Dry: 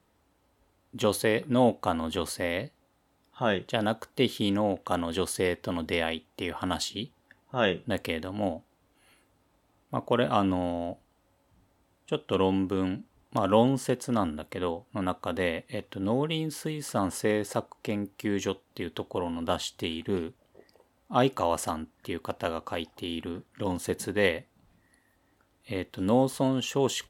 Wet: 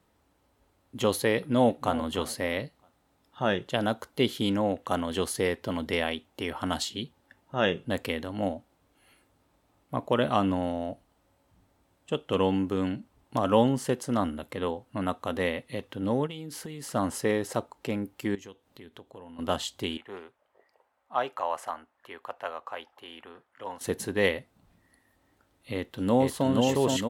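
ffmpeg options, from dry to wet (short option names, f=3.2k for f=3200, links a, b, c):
-filter_complex "[0:a]asplit=2[a][b];[b]afade=t=in:st=1.37:d=0.01,afade=t=out:st=1.95:d=0.01,aecho=0:1:320|640|960:0.16788|0.0503641|0.0151092[c];[a][c]amix=inputs=2:normalize=0,asplit=3[d][e][f];[d]afade=t=out:st=16.26:d=0.02[g];[e]acompressor=threshold=-35dB:ratio=6:attack=3.2:release=140:knee=1:detection=peak,afade=t=in:st=16.26:d=0.02,afade=t=out:st=16.92:d=0.02[h];[f]afade=t=in:st=16.92:d=0.02[i];[g][h][i]amix=inputs=3:normalize=0,asettb=1/sr,asplit=3[j][k][l];[j]atrim=end=18.354[m];[k]atrim=start=18.35:end=19.39,asetpts=PTS-STARTPTS,afade=t=in:d=0.004:c=qsin,afade=t=out:st=1.036:d=0.004:c=qsin,acompressor=threshold=-55dB:ratio=2:attack=3.2:release=140:knee=1:detection=peak[n];[l]atrim=start=19.386[o];[m][n]acrossfade=d=0.004:c1=hsin:c2=qsin[p];[p][o]acrossfade=d=0.004:c1=qsin:c2=hsin,asettb=1/sr,asplit=3[q][r][s];[q]atrim=end=19.974[t];[r]atrim=start=19.97:end=23.81,asetpts=PTS-STARTPTS,afade=t=in:d=0.004:c=qsin,afade=t=out:st=3.836:d=0.004:c=qsin,acrossover=split=570 2300:gain=0.0794 1 0.224[u][v][w];[u][v][w]amix=inputs=3:normalize=0[x];[s]atrim=start=23.806[y];[t][x]acrossfade=d=0.004:c1=hsin:c2=qsin[z];[z][y]acrossfade=d=0.004:c1=qsin:c2=hsin,asplit=2[aa][ab];[ab]afade=t=in:st=25.73:d=0.01,afade=t=out:st=26.49:d=0.01,aecho=0:1:470|940|1410|1880|2350|2820|3290|3760|4230|4700|5170|5640:0.749894|0.524926|0.367448|0.257214|0.18005|0.126035|0.0882243|0.061757|0.0432299|0.0302609|0.0211827|0.0148279[ac];[aa][ac]amix=inputs=2:normalize=0"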